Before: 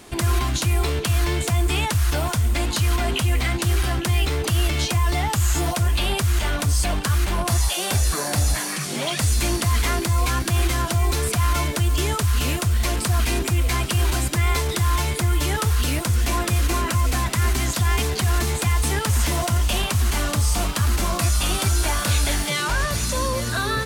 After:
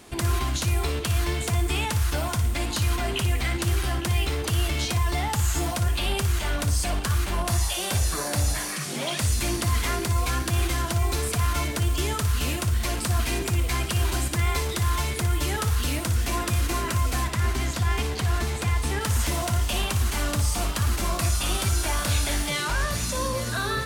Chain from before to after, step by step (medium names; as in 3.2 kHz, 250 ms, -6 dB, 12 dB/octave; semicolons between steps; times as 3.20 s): 17.27–19.01 s: treble shelf 6 kHz -7.5 dB; on a send: flutter echo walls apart 10 m, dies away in 0.36 s; on the sum: trim -4 dB